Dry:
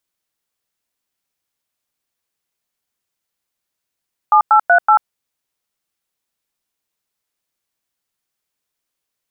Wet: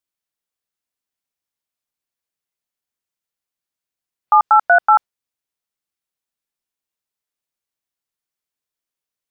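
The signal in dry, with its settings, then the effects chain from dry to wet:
DTMF "7838", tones 89 ms, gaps 99 ms, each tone -9.5 dBFS
spectral noise reduction 8 dB

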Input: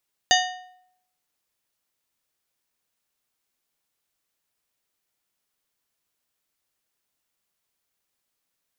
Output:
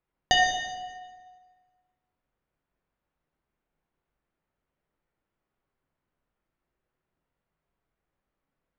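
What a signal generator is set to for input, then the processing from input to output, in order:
metal hit plate, lowest mode 734 Hz, modes 7, decay 0.73 s, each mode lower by 1 dB, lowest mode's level -17 dB
low-pass opened by the level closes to 2000 Hz, open at -37 dBFS; tilt -2.5 dB/oct; plate-style reverb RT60 1.5 s, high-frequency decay 0.8×, DRR 0.5 dB

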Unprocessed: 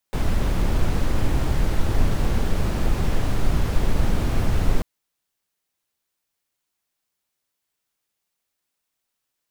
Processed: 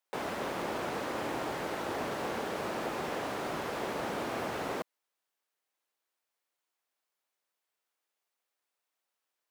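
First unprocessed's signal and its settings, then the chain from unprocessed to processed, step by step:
noise brown, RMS -18 dBFS 4.69 s
HPF 450 Hz 12 dB/oct; high shelf 2500 Hz -9 dB

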